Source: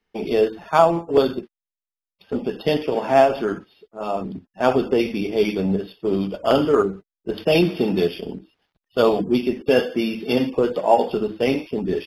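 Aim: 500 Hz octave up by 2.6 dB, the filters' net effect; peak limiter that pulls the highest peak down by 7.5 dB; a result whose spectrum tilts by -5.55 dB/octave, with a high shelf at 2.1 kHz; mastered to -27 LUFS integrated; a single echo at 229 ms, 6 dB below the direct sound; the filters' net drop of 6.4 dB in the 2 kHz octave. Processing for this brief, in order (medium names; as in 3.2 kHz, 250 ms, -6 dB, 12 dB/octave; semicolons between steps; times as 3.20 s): peaking EQ 500 Hz +4 dB; peaking EQ 2 kHz -5 dB; treble shelf 2.1 kHz -6.5 dB; peak limiter -8.5 dBFS; delay 229 ms -6 dB; trim -6.5 dB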